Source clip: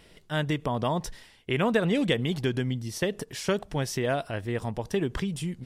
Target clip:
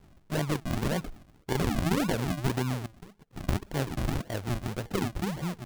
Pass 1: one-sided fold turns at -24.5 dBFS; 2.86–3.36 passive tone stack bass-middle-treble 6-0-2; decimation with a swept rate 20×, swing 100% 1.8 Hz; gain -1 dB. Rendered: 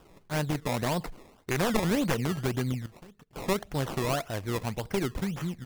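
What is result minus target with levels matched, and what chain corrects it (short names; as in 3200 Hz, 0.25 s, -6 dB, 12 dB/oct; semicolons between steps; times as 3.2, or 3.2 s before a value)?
decimation with a swept rate: distortion -11 dB
one-sided fold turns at -24.5 dBFS; 2.86–3.36 passive tone stack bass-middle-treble 6-0-2; decimation with a swept rate 67×, swing 100% 1.8 Hz; gain -1 dB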